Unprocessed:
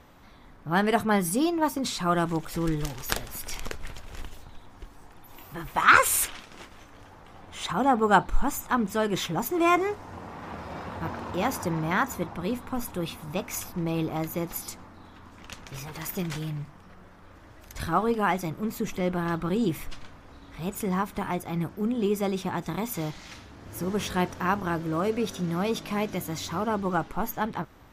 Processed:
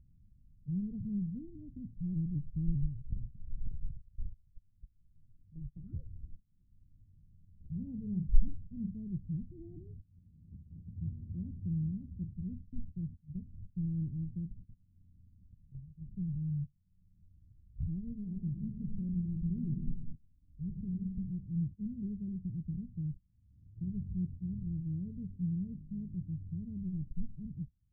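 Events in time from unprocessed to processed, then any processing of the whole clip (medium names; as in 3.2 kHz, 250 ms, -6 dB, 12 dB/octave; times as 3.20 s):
1.55–5.71 s: vibrato with a chosen wave saw up 5 Hz, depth 160 cents
7.70–8.94 s: doubling 43 ms -7 dB
18.12–21.00 s: reverb throw, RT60 1.4 s, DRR 3.5 dB
whole clip: gate -36 dBFS, range -21 dB; inverse Chebyshev low-pass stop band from 940 Hz, stop band 80 dB; upward compressor, threshold -48 dBFS; trim +1 dB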